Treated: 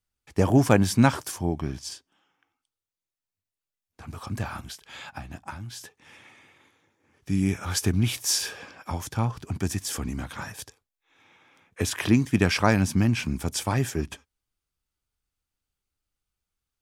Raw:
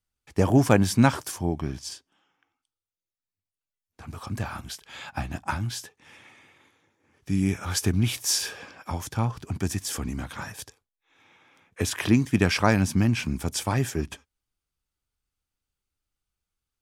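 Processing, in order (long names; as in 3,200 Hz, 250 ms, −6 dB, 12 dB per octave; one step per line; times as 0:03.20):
0:04.62–0:05.81: downward compressor 3 to 1, threshold −37 dBFS, peak gain reduction 11 dB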